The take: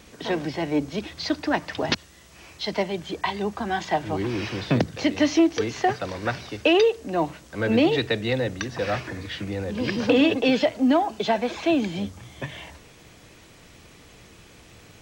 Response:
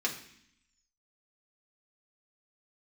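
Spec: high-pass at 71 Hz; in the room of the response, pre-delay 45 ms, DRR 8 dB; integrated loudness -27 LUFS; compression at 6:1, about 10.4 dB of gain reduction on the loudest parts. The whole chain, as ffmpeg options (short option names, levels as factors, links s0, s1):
-filter_complex "[0:a]highpass=71,acompressor=threshold=0.0501:ratio=6,asplit=2[s0][s1];[1:a]atrim=start_sample=2205,adelay=45[s2];[s1][s2]afir=irnorm=-1:irlink=0,volume=0.188[s3];[s0][s3]amix=inputs=2:normalize=0,volume=1.5"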